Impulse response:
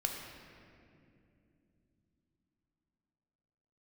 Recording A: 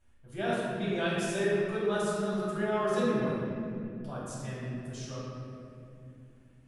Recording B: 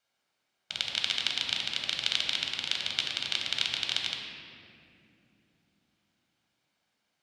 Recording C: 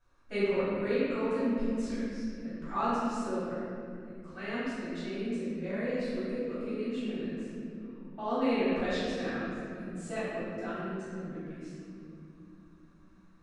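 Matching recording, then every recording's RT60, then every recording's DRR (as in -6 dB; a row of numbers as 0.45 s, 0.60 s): B; 2.7 s, 2.7 s, 2.7 s; -8.0 dB, 1.0 dB, -14.5 dB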